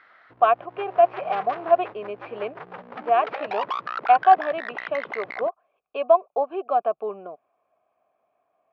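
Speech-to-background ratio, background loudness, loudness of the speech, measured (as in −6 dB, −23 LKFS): 11.0 dB, −34.5 LKFS, −23.5 LKFS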